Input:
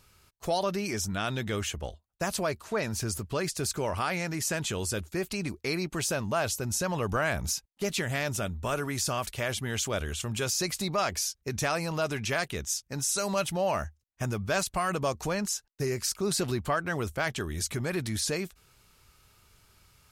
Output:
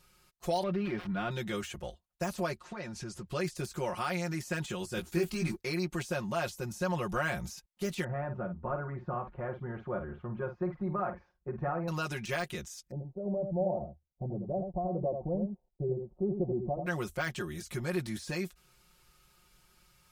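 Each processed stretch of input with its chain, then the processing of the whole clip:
0.63–1.31 switching dead time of 0.08 ms + air absorption 400 m + fast leveller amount 50%
2.56–3.28 compressor 5:1, threshold -31 dBFS + air absorption 77 m
4.95–5.56 G.711 law mismatch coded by mu + bell 570 Hz -7 dB 0.27 oct + doubler 18 ms -2.5 dB
8.04–11.88 LPF 1300 Hz 24 dB/oct + doubler 50 ms -9 dB
12.91–16.86 steep low-pass 750 Hz 48 dB/oct + echo 84 ms -6.5 dB
whole clip: comb 5.6 ms, depth 95%; de-esser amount 75%; gain -6 dB

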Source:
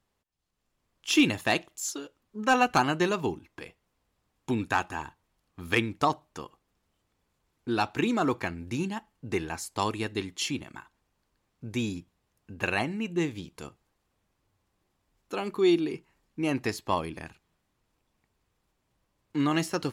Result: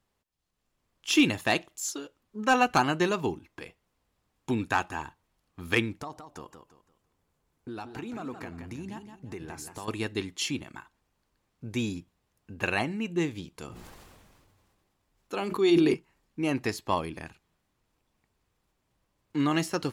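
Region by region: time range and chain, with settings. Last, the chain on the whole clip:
6–9.88 bell 3500 Hz -4.5 dB 2.3 oct + compressor 4:1, threshold -37 dBFS + warbling echo 0.171 s, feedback 33%, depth 118 cents, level -8 dB
13.66–15.94 notches 60/120/180/240/300/360 Hz + sustainer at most 26 dB/s
whole clip: dry

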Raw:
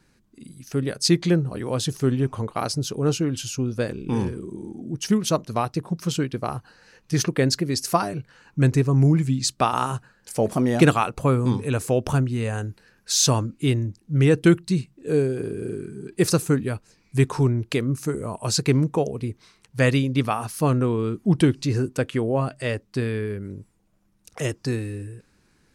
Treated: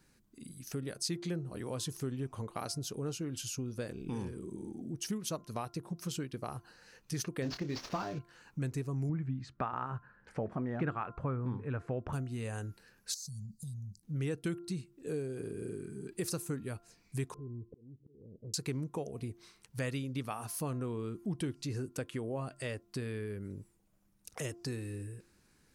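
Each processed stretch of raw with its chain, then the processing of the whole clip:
7.42–8.19 CVSD 32 kbps + doubler 27 ms -9 dB + sample leveller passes 1
9.09–12.13 synth low-pass 1600 Hz, resonance Q 1.8 + bell 72 Hz +5.5 dB 3 oct
13.14–14.03 Chebyshev band-stop 210–4300 Hz, order 5 + compressor 5:1, threshold -34 dBFS
17.34–18.54 steep low-pass 500 Hz 72 dB/oct + compressor 3:1, threshold -37 dBFS + auto swell 0.497 s
whole clip: high shelf 8500 Hz +9.5 dB; de-hum 346.1 Hz, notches 4; compressor 2.5:1, threshold -32 dBFS; gain -6.5 dB

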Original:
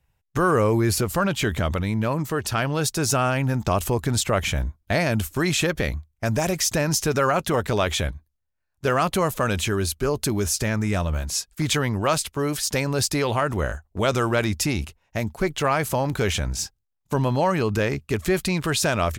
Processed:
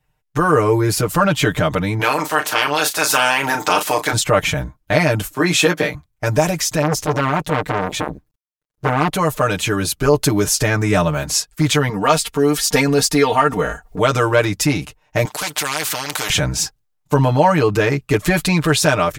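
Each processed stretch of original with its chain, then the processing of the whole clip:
1.99–4.12 spectral limiter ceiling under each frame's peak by 20 dB + HPF 440 Hz 6 dB/oct + doubler 35 ms -9.5 dB
5.34–5.95 HPF 210 Hz + doubler 17 ms -6 dB + three-band expander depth 40%
6.82–9.13 G.711 law mismatch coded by A + low shelf 370 Hz +10 dB + core saturation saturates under 1300 Hz
11.89–13.99 comb 4.3 ms + upward compressor, threshold -26 dBFS
15.25–16.3 weighting filter A + spectral compressor 4:1
whole clip: bell 870 Hz +3.5 dB 2.9 oct; comb 6.6 ms, depth 91%; AGC; gain -1 dB

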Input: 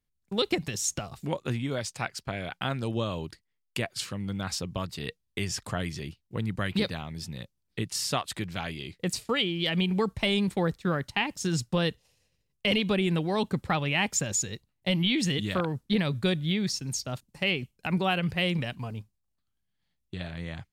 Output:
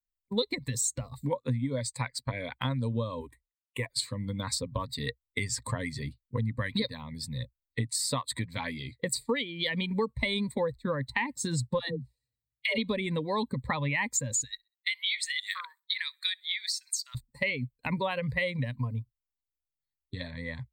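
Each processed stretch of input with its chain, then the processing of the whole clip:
3.2–3.86 CVSD 64 kbps + fixed phaser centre 960 Hz, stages 8
11.79–12.78 notch comb 520 Hz + dispersion lows, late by 0.125 s, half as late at 440 Hz
14.44–17.15 HPF 1400 Hz 24 dB/oct + feedback echo 64 ms, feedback 44%, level -23.5 dB
whole clip: per-bin expansion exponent 1.5; ripple EQ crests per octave 1, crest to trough 15 dB; compressor 4:1, threshold -37 dBFS; gain +8.5 dB

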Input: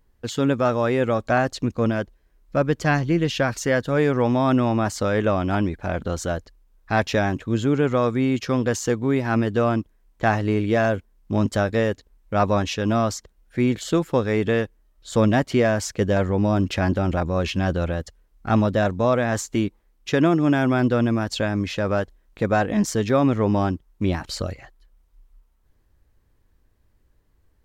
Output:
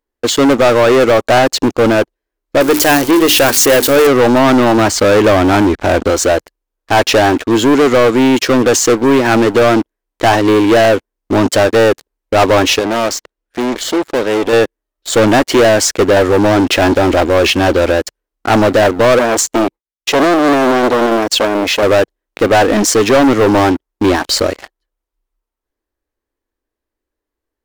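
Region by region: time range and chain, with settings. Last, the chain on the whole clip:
2.61–4.07 switching spikes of -14 dBFS + notches 50/100/150/200/250/300/350/400 Hz
4.78–6.1 LPF 8400 Hz + low shelf 150 Hz +10 dB
12.79–14.53 high shelf 8300 Hz -10.5 dB + notch 760 Hz, Q 16 + tube stage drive 29 dB, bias 0.2
19.19–21.83 expander -47 dBFS + core saturation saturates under 2200 Hz
whole clip: resonant low shelf 210 Hz -12 dB, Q 1.5; sample leveller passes 5; bell 160 Hz -9.5 dB 0.54 oct

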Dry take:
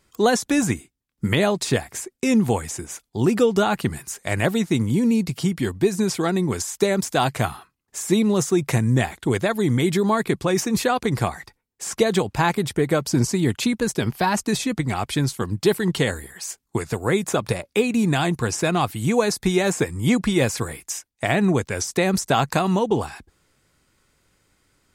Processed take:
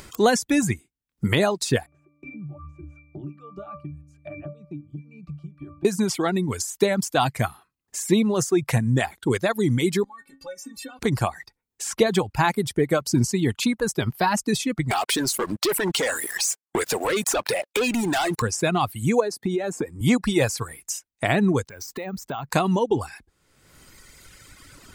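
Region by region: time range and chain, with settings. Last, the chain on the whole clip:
1.86–5.85 octave resonator D, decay 0.58 s + three-band squash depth 70%
10.04–10.99 compressor 3:1, threshold -26 dBFS + metallic resonator 270 Hz, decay 0.21 s, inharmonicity 0.008
14.91–18.42 HPF 360 Hz + sample leveller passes 5 + compressor 12:1, threshold -20 dBFS
19.2–20.01 HPF 210 Hz + tilt shelf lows +6.5 dB, about 840 Hz + compressor, threshold -19 dBFS
21.69–22.52 bell 12000 Hz -12 dB 2.1 oct + compressor 3:1, threshold -29 dBFS + careless resampling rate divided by 2×, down filtered, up hold
whole clip: reverb removal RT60 1.9 s; upward compressor, threshold -30 dBFS

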